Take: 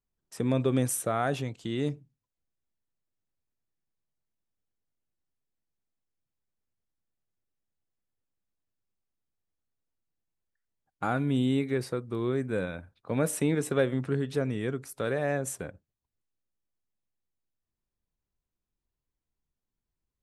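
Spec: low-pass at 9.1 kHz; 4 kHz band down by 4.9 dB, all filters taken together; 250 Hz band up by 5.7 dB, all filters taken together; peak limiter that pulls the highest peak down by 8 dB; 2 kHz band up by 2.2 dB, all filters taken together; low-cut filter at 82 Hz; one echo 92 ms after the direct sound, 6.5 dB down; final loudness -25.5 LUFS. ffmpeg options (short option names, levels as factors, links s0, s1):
-af "highpass=82,lowpass=9100,equalizer=f=250:t=o:g=6.5,equalizer=f=2000:t=o:g=4.5,equalizer=f=4000:t=o:g=-8,alimiter=limit=0.133:level=0:latency=1,aecho=1:1:92:0.473,volume=1.33"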